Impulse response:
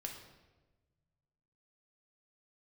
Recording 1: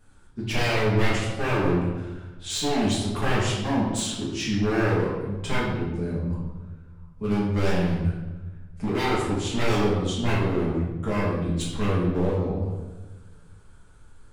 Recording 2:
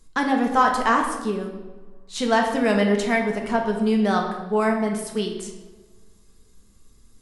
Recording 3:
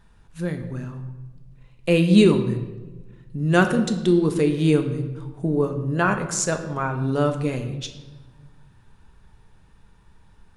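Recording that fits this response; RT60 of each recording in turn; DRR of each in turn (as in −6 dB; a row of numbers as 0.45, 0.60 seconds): 2; 1.2, 1.2, 1.2 seconds; −8.5, 1.0, 6.0 decibels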